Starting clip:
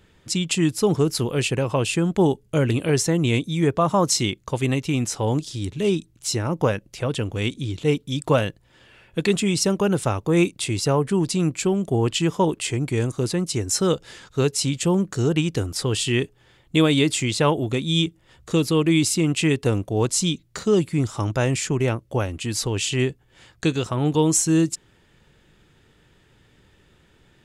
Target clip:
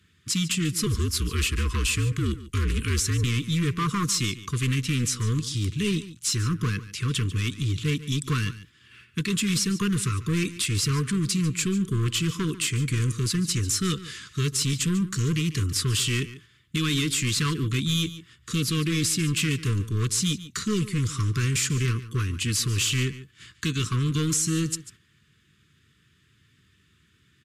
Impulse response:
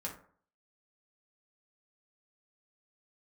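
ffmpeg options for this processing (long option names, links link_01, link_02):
-filter_complex "[0:a]highpass=frequency=72:width=0.5412,highpass=frequency=72:width=1.3066,equalizer=frequency=510:width=0.96:gain=-14.5,agate=range=-7dB:threshold=-53dB:ratio=16:detection=peak,acontrast=29,alimiter=limit=-11.5dB:level=0:latency=1:release=166,asoftclip=type=hard:threshold=-21dB,asettb=1/sr,asplit=3[link_01][link_02][link_03];[link_01]atrim=end=0.864[link_04];[link_02]atrim=start=0.86:end=3.24,asetpts=PTS-STARTPTS,afade=type=in:duration=0.004:curve=qsin,afade=type=out:start_time=2.376:duration=0.004:curve=qsin,afreqshift=-57[link_05];[link_03]atrim=start=3.236[link_06];[link_04][link_05]acrossfade=duration=0.004:curve1=hsin:curve2=qsin[link_07];[link_07][link_06]acrossfade=duration=0.004:curve1=qsin:curve2=hsin,asuperstop=centerf=700:order=20:qfactor=1.3,aecho=1:1:144:0.168" -ar 32000 -c:a libmp3lame -b:a 80k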